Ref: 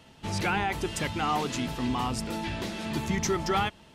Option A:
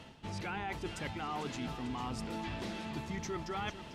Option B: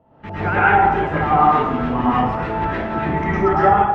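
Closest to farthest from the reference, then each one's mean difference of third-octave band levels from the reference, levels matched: A, B; 3.5, 11.5 decibels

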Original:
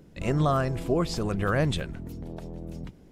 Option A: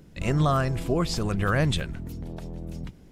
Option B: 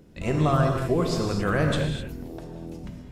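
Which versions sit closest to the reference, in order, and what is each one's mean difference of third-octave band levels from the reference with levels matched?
A, B; 1.5, 4.5 decibels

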